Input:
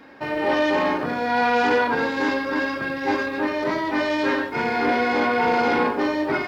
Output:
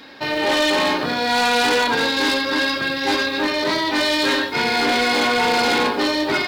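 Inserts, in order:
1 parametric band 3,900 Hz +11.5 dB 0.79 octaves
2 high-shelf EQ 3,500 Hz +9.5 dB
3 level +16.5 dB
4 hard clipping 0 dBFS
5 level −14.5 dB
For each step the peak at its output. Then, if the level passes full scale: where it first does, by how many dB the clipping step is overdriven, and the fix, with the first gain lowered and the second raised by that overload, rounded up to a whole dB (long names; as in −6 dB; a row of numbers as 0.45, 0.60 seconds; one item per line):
−9.5, −6.5, +10.0, 0.0, −14.5 dBFS
step 3, 10.0 dB
step 3 +6.5 dB, step 5 −4.5 dB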